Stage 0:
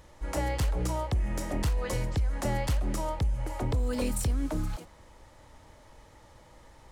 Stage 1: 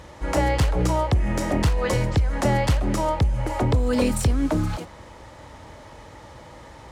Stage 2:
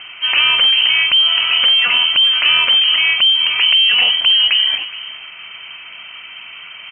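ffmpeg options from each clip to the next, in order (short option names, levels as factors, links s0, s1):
-filter_complex "[0:a]asplit=2[s0][s1];[s1]alimiter=level_in=1.78:limit=0.0631:level=0:latency=1:release=140,volume=0.562,volume=0.794[s2];[s0][s2]amix=inputs=2:normalize=0,highpass=60,highshelf=f=8100:g=-10.5,volume=2.37"
-af "aeval=exprs='0.355*sin(PI/2*1.58*val(0)/0.355)':c=same,aecho=1:1:416:0.15,lowpass=f=2700:t=q:w=0.5098,lowpass=f=2700:t=q:w=0.6013,lowpass=f=2700:t=q:w=0.9,lowpass=f=2700:t=q:w=2.563,afreqshift=-3200,volume=1.19"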